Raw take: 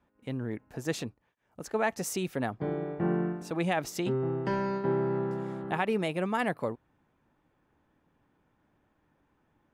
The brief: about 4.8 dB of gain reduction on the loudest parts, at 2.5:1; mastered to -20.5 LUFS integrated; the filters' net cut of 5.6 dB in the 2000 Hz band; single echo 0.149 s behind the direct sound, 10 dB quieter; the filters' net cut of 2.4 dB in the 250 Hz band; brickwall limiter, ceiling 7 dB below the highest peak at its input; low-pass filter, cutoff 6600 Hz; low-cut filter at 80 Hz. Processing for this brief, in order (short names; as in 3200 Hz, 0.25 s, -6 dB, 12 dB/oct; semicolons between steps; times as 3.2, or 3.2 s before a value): HPF 80 Hz; LPF 6600 Hz; bell 250 Hz -3.5 dB; bell 2000 Hz -7 dB; compressor 2.5:1, threshold -33 dBFS; limiter -28.5 dBFS; echo 0.149 s -10 dB; gain +18 dB